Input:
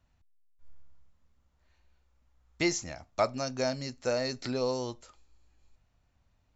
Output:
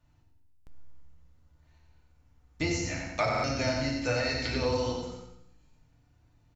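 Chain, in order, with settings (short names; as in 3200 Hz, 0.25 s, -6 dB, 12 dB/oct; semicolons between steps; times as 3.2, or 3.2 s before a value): octaver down 2 oct, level -2 dB; 2.83–5.01 bell 2400 Hz +11.5 dB 1.8 oct; feedback echo 90 ms, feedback 42%, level -5 dB; FDN reverb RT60 0.67 s, low-frequency decay 1.4×, high-frequency decay 0.65×, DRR -2 dB; compressor 1.5:1, threshold -34 dBFS, peak gain reduction 7 dB; bell 130 Hz +6.5 dB 0.47 oct; stuck buffer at 0.53/3.3, samples 2048, times 2; gain -1.5 dB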